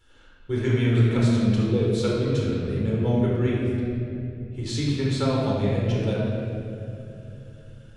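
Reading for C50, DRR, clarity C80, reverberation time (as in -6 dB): -1.5 dB, -5.0 dB, 0.5 dB, 2.8 s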